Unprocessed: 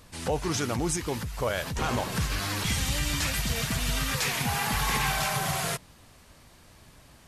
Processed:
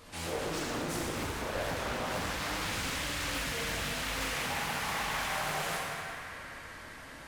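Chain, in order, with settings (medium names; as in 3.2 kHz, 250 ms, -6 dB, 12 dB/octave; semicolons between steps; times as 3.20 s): tone controls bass -8 dB, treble -4 dB; in parallel at -2 dB: compressor with a negative ratio -40 dBFS, ratio -1; on the sum: hard clipper -30.5 dBFS, distortion -8 dB; on a send: band-passed feedback delay 194 ms, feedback 83%, band-pass 1.7 kHz, level -7 dB; on the sum: plate-style reverb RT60 2.1 s, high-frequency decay 0.75×, DRR -5 dB; loudspeaker Doppler distortion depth 0.7 ms; trim -8 dB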